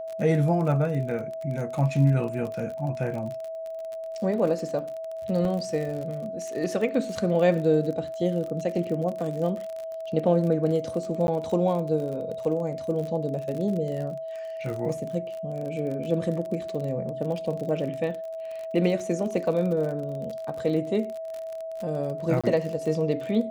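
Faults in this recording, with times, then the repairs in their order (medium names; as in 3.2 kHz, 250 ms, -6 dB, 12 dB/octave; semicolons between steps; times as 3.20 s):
crackle 43 per s -32 dBFS
whine 650 Hz -32 dBFS
5.45 s: dropout 2.3 ms
11.27–11.28 s: dropout 11 ms
22.41–22.44 s: dropout 26 ms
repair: de-click; band-stop 650 Hz, Q 30; interpolate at 5.45 s, 2.3 ms; interpolate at 11.27 s, 11 ms; interpolate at 22.41 s, 26 ms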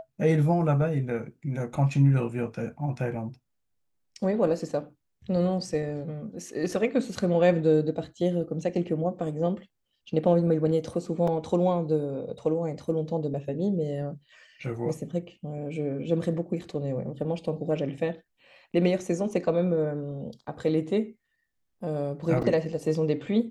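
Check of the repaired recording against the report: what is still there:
nothing left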